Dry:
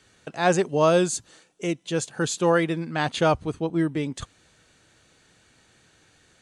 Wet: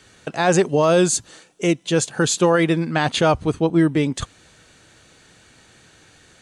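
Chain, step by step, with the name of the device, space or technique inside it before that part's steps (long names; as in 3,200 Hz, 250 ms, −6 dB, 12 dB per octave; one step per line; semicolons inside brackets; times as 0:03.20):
clipper into limiter (hard clipping −8.5 dBFS, distortion −42 dB; brickwall limiter −15.5 dBFS, peak gain reduction 7 dB)
level +8 dB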